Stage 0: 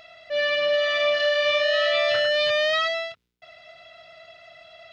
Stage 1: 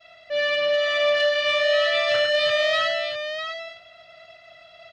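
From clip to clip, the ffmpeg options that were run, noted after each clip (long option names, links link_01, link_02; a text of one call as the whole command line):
ffmpeg -i in.wav -af "agate=range=-33dB:threshold=-45dB:ratio=3:detection=peak,aecho=1:1:654:0.376,acontrast=84,volume=-6.5dB" out.wav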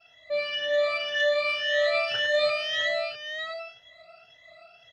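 ffmpeg -i in.wav -af "afftfilt=real='re*pow(10,19/40*sin(2*PI*(1.1*log(max(b,1)*sr/1024/100)/log(2)-(1.9)*(pts-256)/sr)))':imag='im*pow(10,19/40*sin(2*PI*(1.1*log(max(b,1)*sr/1024/100)/log(2)-(1.9)*(pts-256)/sr)))':win_size=1024:overlap=0.75,volume=-8.5dB" out.wav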